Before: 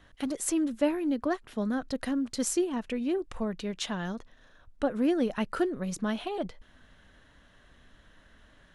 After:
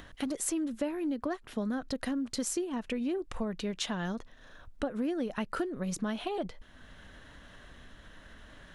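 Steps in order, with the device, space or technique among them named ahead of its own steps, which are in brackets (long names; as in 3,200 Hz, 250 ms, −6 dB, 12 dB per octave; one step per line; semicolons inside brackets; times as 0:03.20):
upward and downward compression (upward compression, threshold −46 dBFS; downward compressor 5 to 1, threshold −32 dBFS, peak gain reduction 11 dB)
level +2 dB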